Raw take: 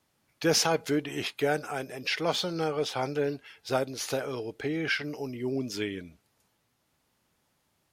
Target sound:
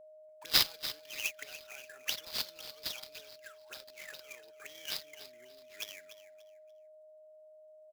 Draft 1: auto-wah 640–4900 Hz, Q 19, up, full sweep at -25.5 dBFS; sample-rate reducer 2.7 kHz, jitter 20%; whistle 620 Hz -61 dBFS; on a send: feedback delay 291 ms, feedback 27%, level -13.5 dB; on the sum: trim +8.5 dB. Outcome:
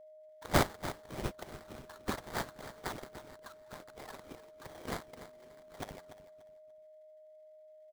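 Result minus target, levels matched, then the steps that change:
sample-rate reducer: distortion +12 dB
change: sample-rate reducer 9 kHz, jitter 20%

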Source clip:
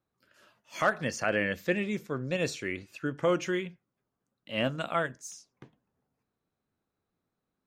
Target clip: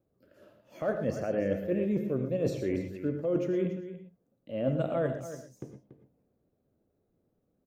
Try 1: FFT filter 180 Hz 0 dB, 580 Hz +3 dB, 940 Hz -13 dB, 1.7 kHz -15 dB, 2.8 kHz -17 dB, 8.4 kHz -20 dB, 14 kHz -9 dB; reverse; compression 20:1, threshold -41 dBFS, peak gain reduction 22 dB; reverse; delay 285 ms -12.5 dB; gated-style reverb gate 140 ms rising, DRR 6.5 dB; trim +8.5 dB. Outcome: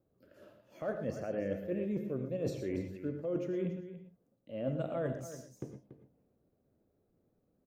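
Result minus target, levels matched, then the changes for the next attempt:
compression: peak gain reduction +6 dB
change: compression 20:1, threshold -34.5 dBFS, peak gain reduction 16 dB

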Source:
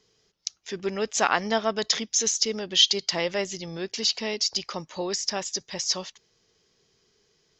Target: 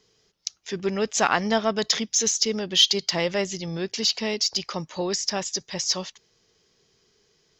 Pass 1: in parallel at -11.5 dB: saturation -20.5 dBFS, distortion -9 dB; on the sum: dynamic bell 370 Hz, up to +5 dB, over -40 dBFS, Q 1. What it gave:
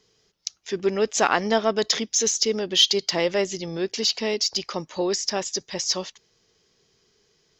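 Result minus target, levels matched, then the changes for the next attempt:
125 Hz band -3.0 dB
change: dynamic bell 150 Hz, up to +5 dB, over -40 dBFS, Q 1

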